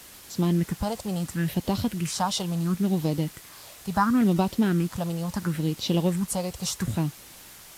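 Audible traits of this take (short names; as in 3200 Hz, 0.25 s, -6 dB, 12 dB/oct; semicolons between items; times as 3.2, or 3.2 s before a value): phasing stages 4, 0.73 Hz, lowest notch 280–1700 Hz; a quantiser's noise floor 8-bit, dither triangular; AAC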